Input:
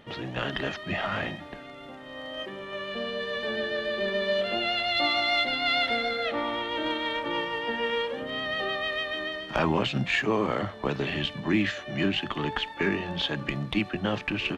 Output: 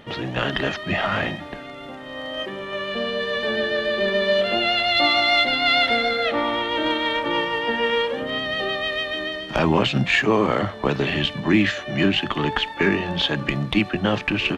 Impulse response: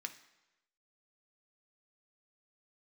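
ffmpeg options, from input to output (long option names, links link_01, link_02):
-filter_complex "[0:a]asettb=1/sr,asplit=3[link_01][link_02][link_03];[link_01]atrim=end=8.384[link_04];[link_02]atrim=start=8.38:end=9.72,asetpts=PTS-STARTPTS,afade=type=in:duration=0.004:curve=qsin,afade=type=out:start_time=1.336:duration=0.004:curve=qsin,equalizer=frequency=1200:width_type=o:width=1.7:gain=-4.5[link_05];[link_03]atrim=start=9.716[link_06];[link_04][link_05]acrossfade=duration=0.004:curve1=hsin:curve2=qsin[link_07];[link_07][link_06]acrossfade=duration=0.004:curve1=qsin:curve2=hsin,volume=7dB"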